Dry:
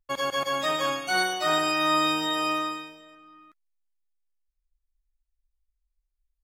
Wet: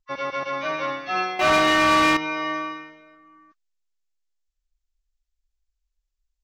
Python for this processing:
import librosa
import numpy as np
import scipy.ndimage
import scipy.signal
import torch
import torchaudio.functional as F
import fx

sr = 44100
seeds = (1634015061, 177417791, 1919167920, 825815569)

y = fx.freq_compress(x, sr, knee_hz=1000.0, ratio=1.5)
y = fx.leveller(y, sr, passes=3, at=(1.39, 2.17))